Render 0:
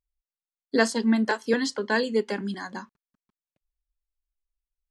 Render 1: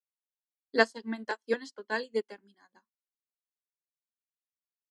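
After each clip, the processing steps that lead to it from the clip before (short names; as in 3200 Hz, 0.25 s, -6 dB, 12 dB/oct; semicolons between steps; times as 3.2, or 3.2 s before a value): HPF 280 Hz 12 dB/oct; upward expander 2.5:1, over -42 dBFS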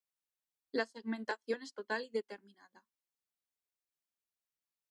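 compressor 4:1, threshold -33 dBFS, peak gain reduction 14.5 dB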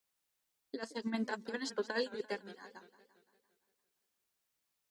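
negative-ratio compressor -39 dBFS, ratio -0.5; warbling echo 0.171 s, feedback 58%, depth 200 cents, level -15.5 dB; gain +4.5 dB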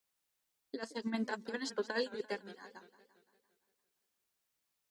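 nothing audible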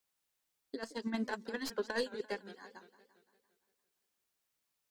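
tracing distortion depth 0.04 ms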